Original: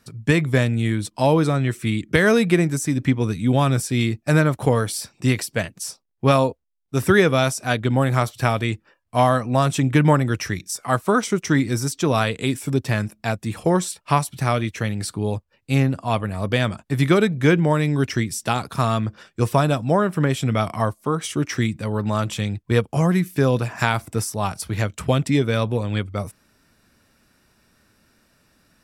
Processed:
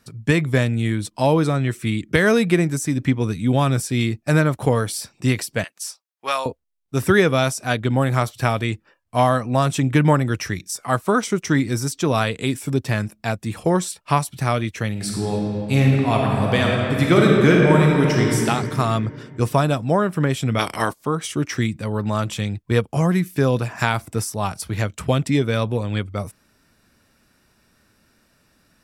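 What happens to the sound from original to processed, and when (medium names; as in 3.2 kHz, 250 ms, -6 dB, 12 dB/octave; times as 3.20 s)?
5.64–6.46 s: high-pass 960 Hz
14.91–18.38 s: reverb throw, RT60 2.8 s, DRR -2 dB
20.58–21.04 s: spectral peaks clipped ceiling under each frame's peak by 20 dB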